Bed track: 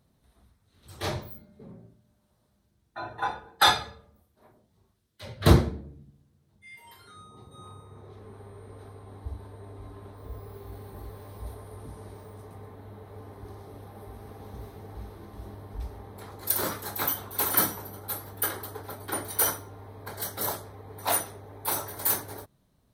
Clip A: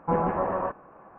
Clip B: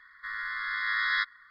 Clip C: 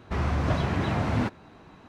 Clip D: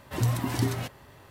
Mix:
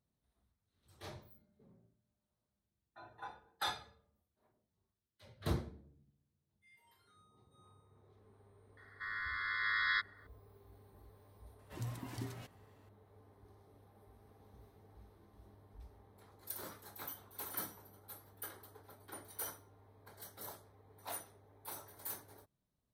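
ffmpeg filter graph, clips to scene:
ffmpeg -i bed.wav -i cue0.wav -i cue1.wav -i cue2.wav -i cue3.wav -filter_complex "[0:a]volume=-18.5dB[link_01];[2:a]atrim=end=1.5,asetpts=PTS-STARTPTS,volume=-6dB,afade=type=in:duration=0.004:curve=hsin,afade=type=out:start_time=1.496:duration=0.004:curve=hsin,adelay=8770[link_02];[4:a]atrim=end=1.3,asetpts=PTS-STARTPTS,volume=-17dB,afade=type=in:duration=0.004:curve=hsin,afade=type=out:start_time=1.296:duration=0.004:curve=hsin,adelay=11590[link_03];[link_01][link_02][link_03]amix=inputs=3:normalize=0" out.wav

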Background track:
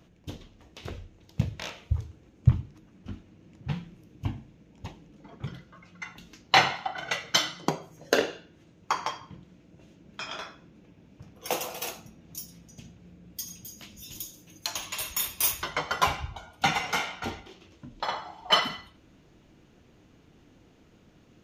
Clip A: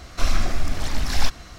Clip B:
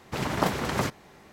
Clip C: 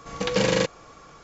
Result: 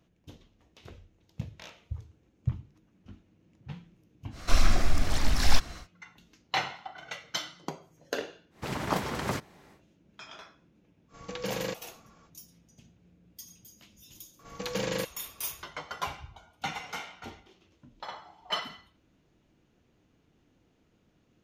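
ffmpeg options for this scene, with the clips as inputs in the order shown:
ffmpeg -i bed.wav -i cue0.wav -i cue1.wav -i cue2.wav -filter_complex "[3:a]asplit=2[link_01][link_02];[0:a]volume=-10dB[link_03];[1:a]atrim=end=1.58,asetpts=PTS-STARTPTS,volume=-1.5dB,afade=type=in:duration=0.1,afade=type=out:start_time=1.48:duration=0.1,adelay=4300[link_04];[2:a]atrim=end=1.32,asetpts=PTS-STARTPTS,volume=-4.5dB,afade=type=in:duration=0.1,afade=type=out:start_time=1.22:duration=0.1,adelay=374850S[link_05];[link_01]atrim=end=1.23,asetpts=PTS-STARTPTS,volume=-12dB,afade=type=in:duration=0.05,afade=type=out:start_time=1.18:duration=0.05,adelay=11080[link_06];[link_02]atrim=end=1.23,asetpts=PTS-STARTPTS,volume=-10dB,afade=type=in:duration=0.004:curve=hsin,afade=type=out:start_time=1.226:duration=0.004:curve=hsin,adelay=14390[link_07];[link_03][link_04][link_05][link_06][link_07]amix=inputs=5:normalize=0" out.wav

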